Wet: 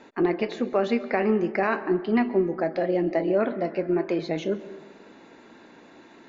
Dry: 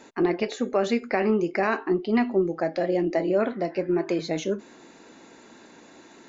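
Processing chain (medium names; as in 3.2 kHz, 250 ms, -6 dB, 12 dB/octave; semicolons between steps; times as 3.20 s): low-pass 3.7 kHz 12 dB/octave; on a send: reverberation RT60 1.4 s, pre-delay 117 ms, DRR 15 dB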